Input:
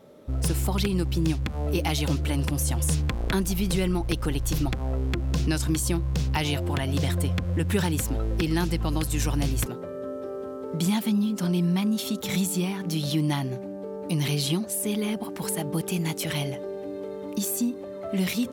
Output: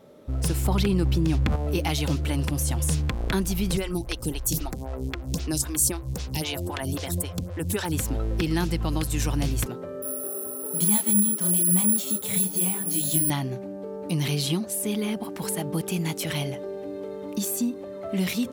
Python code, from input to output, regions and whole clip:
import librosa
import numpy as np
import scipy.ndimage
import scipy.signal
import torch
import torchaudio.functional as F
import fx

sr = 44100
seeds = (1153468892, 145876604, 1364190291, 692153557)

y = fx.chain(x, sr, fx.peak_eq(hz=15000.0, db=-5.5, octaves=2.5),
    fx.env_flatten(amount_pct=100), at=(0.65, 1.56))
y = fx.chain(y, sr, fx.bass_treble(bass_db=1, treble_db=10),
    fx.stagger_phaser(hz=3.8), at=(3.77, 7.92))
y = fx.chain(y, sr, fx.resample_bad(factor=4, down='filtered', up='zero_stuff'),
    fx.detune_double(cents=37), at=(10.02, 13.3))